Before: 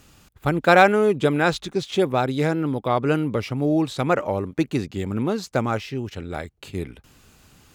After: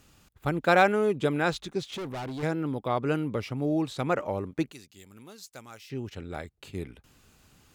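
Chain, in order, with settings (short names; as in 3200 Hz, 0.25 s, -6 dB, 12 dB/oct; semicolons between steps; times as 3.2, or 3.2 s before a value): 1.88–2.43 overloaded stage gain 26.5 dB; 4.72–5.9 pre-emphasis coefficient 0.9; gain -6.5 dB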